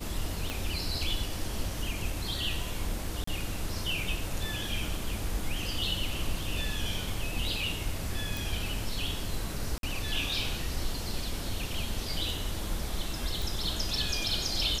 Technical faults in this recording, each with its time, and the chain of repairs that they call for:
0.5 pop -18 dBFS
3.24–3.27 gap 34 ms
8.37 pop
9.78–9.83 gap 52 ms
13.42 pop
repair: de-click; interpolate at 3.24, 34 ms; interpolate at 9.78, 52 ms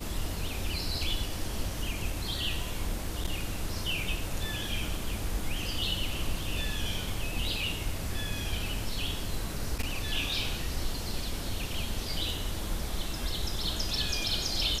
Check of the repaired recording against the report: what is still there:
0.5 pop

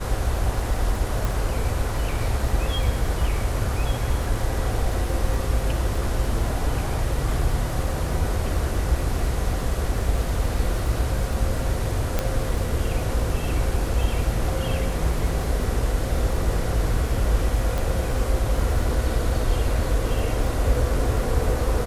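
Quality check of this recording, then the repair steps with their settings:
crackle 27/s -30 dBFS
1.25 pop
12.19 pop -8 dBFS
17.78 pop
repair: de-click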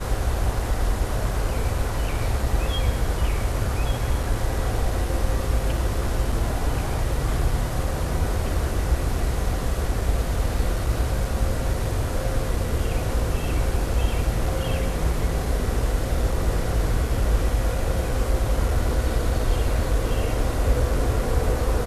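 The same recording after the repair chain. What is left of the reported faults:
none

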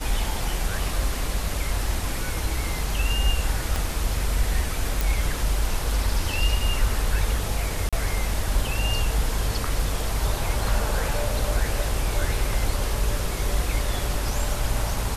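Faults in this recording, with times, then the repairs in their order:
3.76 pop
5.01 pop
7.89–7.93 gap 36 ms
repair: de-click; interpolate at 7.89, 36 ms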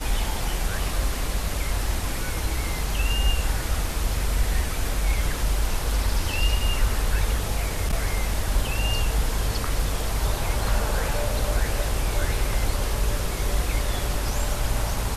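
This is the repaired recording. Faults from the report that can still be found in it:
3.76 pop

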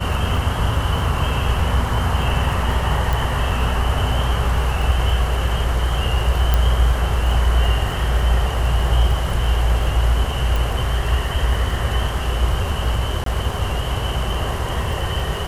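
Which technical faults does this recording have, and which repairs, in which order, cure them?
crackle 24/s -26 dBFS
3.13 pop
6.54 pop
10.56 pop
13.24–13.26 gap 23 ms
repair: de-click; interpolate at 13.24, 23 ms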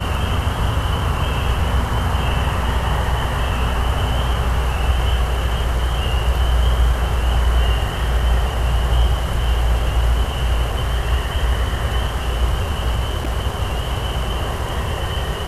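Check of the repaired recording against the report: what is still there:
none

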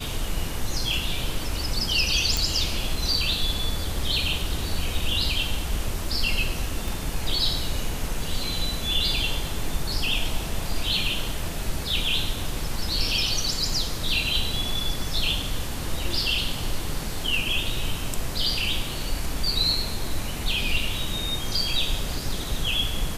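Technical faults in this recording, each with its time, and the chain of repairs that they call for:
2.37 pop
6.88 pop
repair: de-click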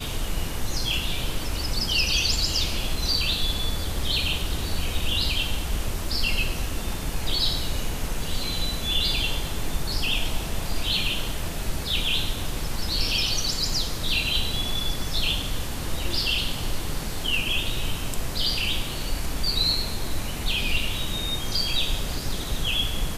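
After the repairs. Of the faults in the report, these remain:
none

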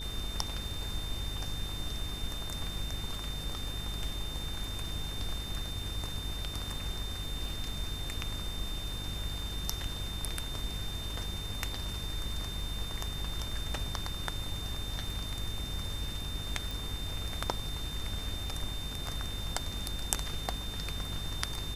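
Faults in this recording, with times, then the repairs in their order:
buzz 50 Hz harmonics 9 -41 dBFS
crackle 36/s -44 dBFS
tone 3600 Hz -41 dBFS
16.71 pop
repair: de-click; de-hum 50 Hz, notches 9; notch 3600 Hz, Q 30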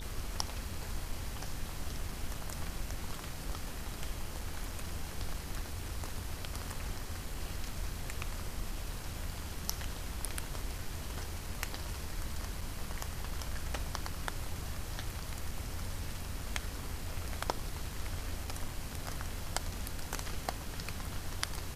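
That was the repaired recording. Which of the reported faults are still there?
none

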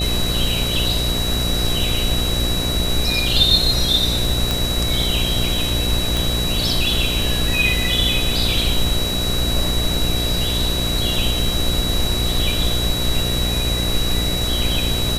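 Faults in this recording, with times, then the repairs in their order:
buzz 60 Hz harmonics 12 -24 dBFS
tone 3900 Hz -23 dBFS
4.51 pop
6.17 pop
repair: de-click; de-hum 60 Hz, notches 12; notch 3900 Hz, Q 30

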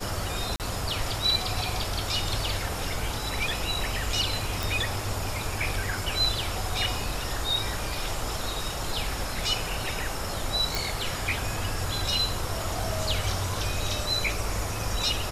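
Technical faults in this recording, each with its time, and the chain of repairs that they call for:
0.56–0.6 gap 38 ms
4.63 pop
10.75 pop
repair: de-click; interpolate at 0.56, 38 ms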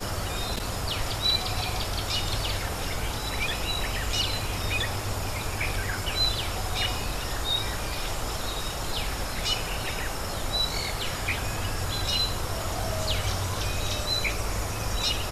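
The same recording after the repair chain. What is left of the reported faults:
none

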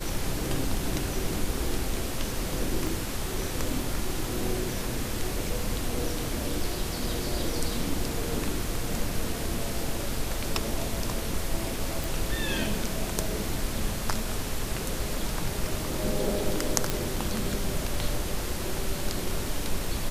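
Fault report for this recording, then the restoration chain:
2.87 pop
12.04 pop
16.9 pop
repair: de-click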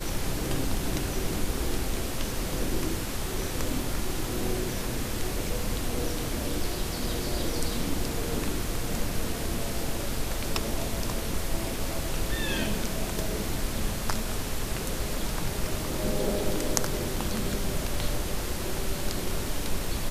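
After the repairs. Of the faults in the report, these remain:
none

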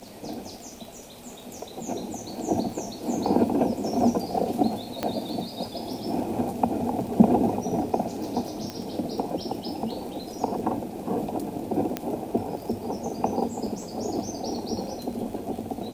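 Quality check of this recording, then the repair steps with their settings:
crackle 21/s -34 dBFS
5.03 pop -12 dBFS
8.7 pop -18 dBFS
11.97 pop -12 dBFS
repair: de-click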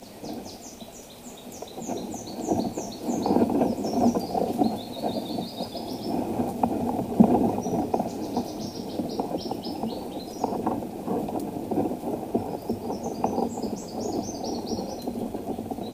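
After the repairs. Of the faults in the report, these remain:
5.03 pop

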